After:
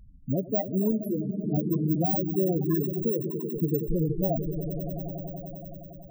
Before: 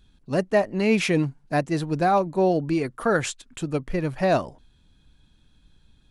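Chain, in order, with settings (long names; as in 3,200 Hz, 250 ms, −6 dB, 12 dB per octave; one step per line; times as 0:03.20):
samples in bit-reversed order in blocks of 32 samples
downward compressor 3 to 1, threshold −31 dBFS, peak gain reduction 12 dB
echo that builds up and dies away 94 ms, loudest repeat 5, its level −10.5 dB
spectral peaks only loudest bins 8
0:00.91–0:01.44: string-ensemble chorus
level +7 dB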